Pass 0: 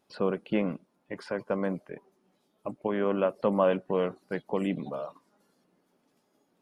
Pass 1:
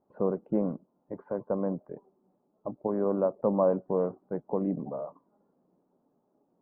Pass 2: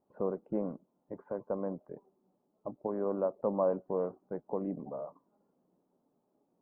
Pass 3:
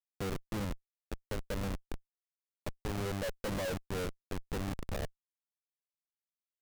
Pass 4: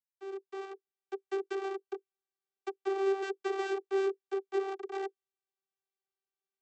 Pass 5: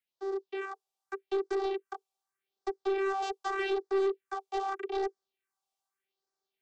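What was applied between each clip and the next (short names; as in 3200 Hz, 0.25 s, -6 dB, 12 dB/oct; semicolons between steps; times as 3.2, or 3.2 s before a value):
LPF 1000 Hz 24 dB/oct
dynamic EQ 140 Hz, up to -5 dB, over -40 dBFS, Q 0.76; gain -4 dB
Schmitt trigger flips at -35 dBFS; gain +2.5 dB
opening faded in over 1.06 s; vocoder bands 32, saw 389 Hz; gain +6 dB
phaser stages 4, 0.83 Hz, lowest notch 280–2700 Hz; overdrive pedal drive 19 dB, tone 3200 Hz, clips at -21.5 dBFS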